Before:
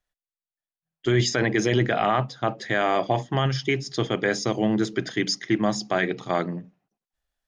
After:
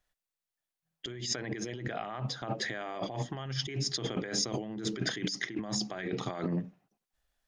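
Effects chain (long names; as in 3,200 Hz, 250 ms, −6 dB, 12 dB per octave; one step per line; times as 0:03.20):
compressor whose output falls as the input rises −32 dBFS, ratio −1
level −4 dB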